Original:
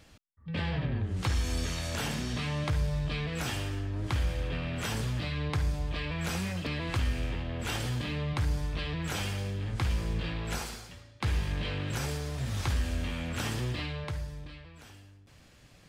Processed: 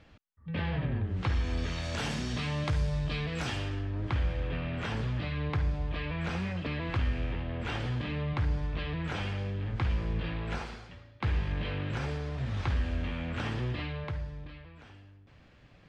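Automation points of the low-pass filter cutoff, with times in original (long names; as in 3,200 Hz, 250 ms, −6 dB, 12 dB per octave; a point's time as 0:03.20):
0:01.56 3,000 Hz
0:02.13 7,200 Hz
0:03.21 7,200 Hz
0:04.10 2,900 Hz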